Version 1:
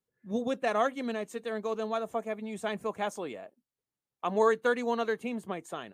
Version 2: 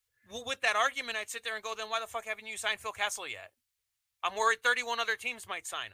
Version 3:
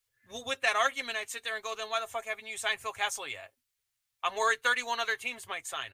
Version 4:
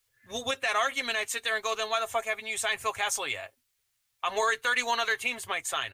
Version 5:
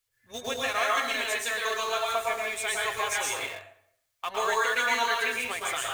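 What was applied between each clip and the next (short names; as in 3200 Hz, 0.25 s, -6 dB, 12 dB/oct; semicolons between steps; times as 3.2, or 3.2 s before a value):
EQ curve 100 Hz 0 dB, 170 Hz -30 dB, 2200 Hz +3 dB; gain +7 dB
comb 7.4 ms, depth 44%
limiter -23 dBFS, peak gain reduction 10.5 dB; gain +6.5 dB
plate-style reverb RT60 0.68 s, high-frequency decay 0.75×, pre-delay 0.1 s, DRR -3.5 dB; in parallel at -9 dB: bit-crush 5-bit; on the sum: gain -6 dB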